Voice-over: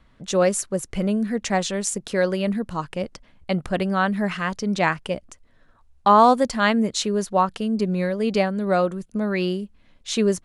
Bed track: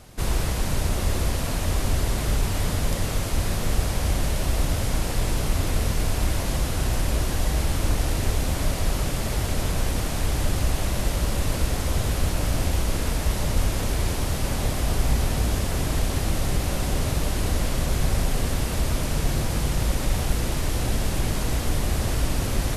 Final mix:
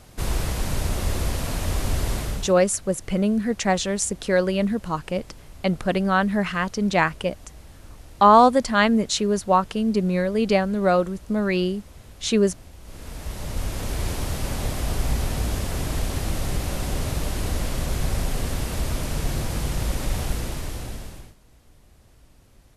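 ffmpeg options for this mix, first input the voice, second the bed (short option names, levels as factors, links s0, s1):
-filter_complex "[0:a]adelay=2150,volume=1.12[s0];[1:a]volume=8.41,afade=t=out:st=2.15:d=0.4:silence=0.0944061,afade=t=in:st=12.8:d=1.28:silence=0.105925,afade=t=out:st=20.24:d=1.11:silence=0.0375837[s1];[s0][s1]amix=inputs=2:normalize=0"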